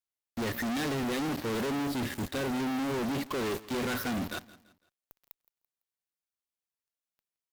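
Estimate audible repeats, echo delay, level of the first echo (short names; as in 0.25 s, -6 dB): 2, 0.168 s, -19.5 dB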